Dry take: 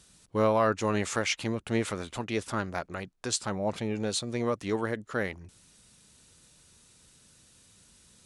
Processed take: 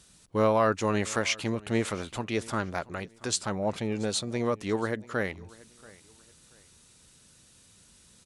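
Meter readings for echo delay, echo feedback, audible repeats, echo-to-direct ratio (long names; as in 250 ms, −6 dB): 682 ms, 29%, 2, −22.0 dB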